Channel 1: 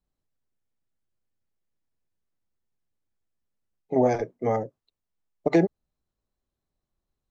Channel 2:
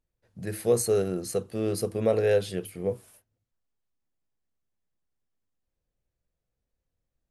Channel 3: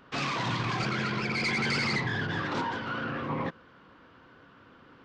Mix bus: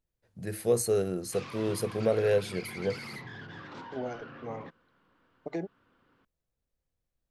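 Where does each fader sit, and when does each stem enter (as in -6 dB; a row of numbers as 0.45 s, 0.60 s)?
-15.0 dB, -2.5 dB, -13.5 dB; 0.00 s, 0.00 s, 1.20 s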